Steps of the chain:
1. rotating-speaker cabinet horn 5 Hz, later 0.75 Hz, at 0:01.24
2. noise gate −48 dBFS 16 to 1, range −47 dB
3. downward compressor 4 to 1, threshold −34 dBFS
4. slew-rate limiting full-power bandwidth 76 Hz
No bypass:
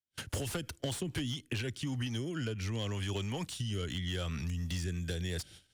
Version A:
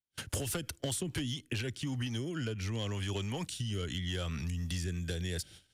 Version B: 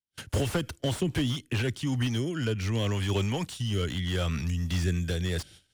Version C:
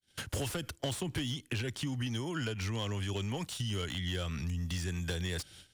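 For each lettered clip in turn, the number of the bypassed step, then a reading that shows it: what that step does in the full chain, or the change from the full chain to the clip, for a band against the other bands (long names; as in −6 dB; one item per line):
4, distortion level −17 dB
3, average gain reduction 7.0 dB
1, 1 kHz band +2.0 dB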